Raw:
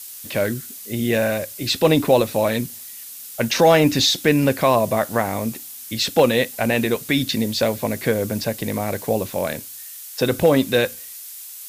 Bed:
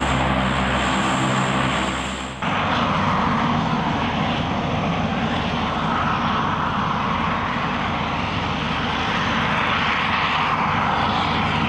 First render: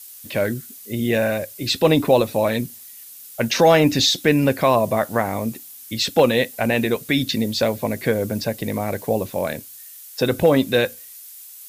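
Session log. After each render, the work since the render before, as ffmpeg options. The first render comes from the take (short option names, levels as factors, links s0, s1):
-af "afftdn=nr=6:nf=-37"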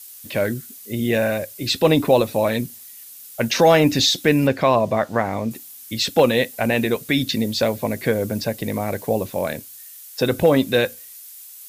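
-filter_complex "[0:a]asettb=1/sr,asplit=3[s0][s1][s2];[s0]atrim=end=4.474[s3];[s1]atrim=start=4.47:end=5.51,asetpts=PTS-STARTPTS,afade=t=in:d=0.004:c=qsin,afade=t=out:st=1.036:d=0.004:c=qsin,acrossover=split=6500[s4][s5];[s5]acompressor=threshold=0.002:ratio=4:attack=1:release=60[s6];[s4][s6]amix=inputs=2:normalize=0[s7];[s2]atrim=start=5.506[s8];[s3][s7]acrossfade=d=0.004:c1=hsin:c2=qsin[s9];[s9][s8]acrossfade=d=0.004:c1=qsin:c2=hsin"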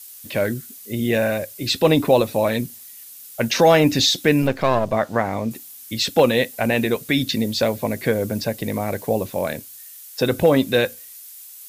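-filter_complex "[0:a]asettb=1/sr,asplit=3[s0][s1][s2];[s0]atrim=end=4.424[s3];[s1]atrim=start=4.42:end=4.93,asetpts=PTS-STARTPTS,afade=t=in:d=0.004:c=qsin,afade=t=out:st=0.506:d=0.004:c=qsin,aeval=exprs='if(lt(val(0),0),0.447*val(0),val(0))':c=same[s4];[s2]atrim=start=4.926[s5];[s3][s4]acrossfade=d=0.004:c1=hsin:c2=qsin[s6];[s6][s5]acrossfade=d=0.004:c1=qsin:c2=hsin"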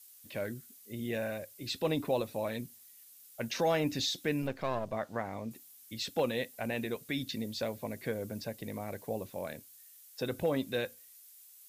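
-af "volume=0.168"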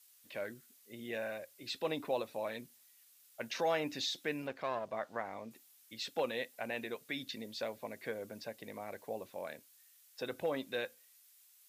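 -af "highpass=f=640:p=1,highshelf=f=5100:g=-9.5"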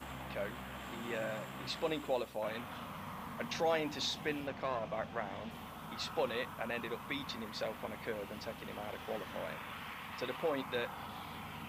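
-filter_complex "[1:a]volume=0.0501[s0];[0:a][s0]amix=inputs=2:normalize=0"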